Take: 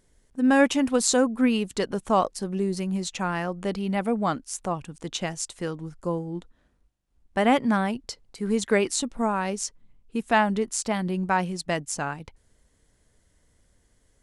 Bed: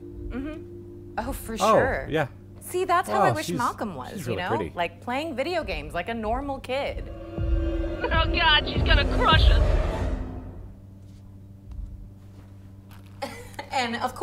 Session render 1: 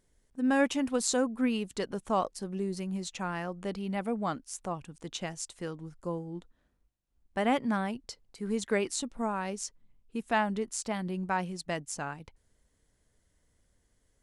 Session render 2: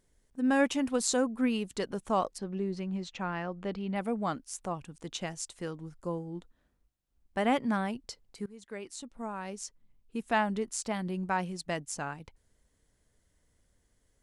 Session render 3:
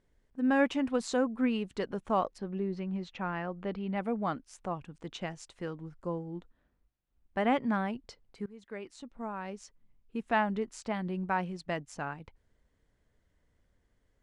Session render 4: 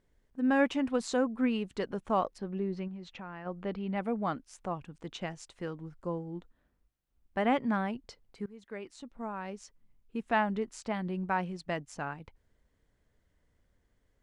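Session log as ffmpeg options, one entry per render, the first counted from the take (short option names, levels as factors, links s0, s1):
-af "volume=0.447"
-filter_complex "[0:a]asettb=1/sr,asplit=3[s0][s1][s2];[s0]atrim=end=2.384[s3];[s1]atrim=start=2.38:end=3.96,asetpts=PTS-STARTPTS,afade=t=in:d=0.004:c=qsin,afade=t=out:st=1.576:d=0.004:c=qsin,lowpass=4000[s4];[s2]atrim=start=3.956[s5];[s3][s4]acrossfade=d=0.004:c1=hsin:c2=qsin[s6];[s6][s5]acrossfade=d=0.004:c1=qsin:c2=hsin,asplit=2[s7][s8];[s7]atrim=end=8.46,asetpts=PTS-STARTPTS,afade=t=out:st=8.456:d=0.004:c=hsin:silence=0.0707946[s9];[s8]atrim=start=8.46,asetpts=PTS-STARTPTS,afade=t=in:d=1.81:silence=0.0707946[s10];[s9][s10]concat=n=2:v=0:a=1"
-af "lowpass=2400,aemphasis=mode=production:type=50fm"
-filter_complex "[0:a]asplit=3[s0][s1][s2];[s0]afade=t=out:st=2.87:d=0.02[s3];[s1]acompressor=threshold=0.00794:ratio=3:attack=3.2:release=140:knee=1:detection=peak,afade=t=in:st=2.87:d=0.02,afade=t=out:st=3.45:d=0.02[s4];[s2]afade=t=in:st=3.45:d=0.02[s5];[s3][s4][s5]amix=inputs=3:normalize=0"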